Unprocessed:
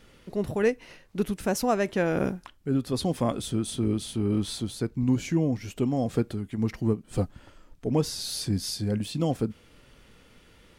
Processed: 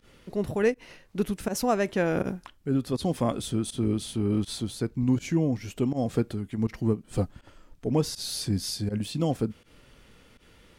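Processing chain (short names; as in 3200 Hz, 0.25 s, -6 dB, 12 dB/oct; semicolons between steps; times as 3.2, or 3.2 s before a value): pump 81 bpm, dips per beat 1, -20 dB, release 87 ms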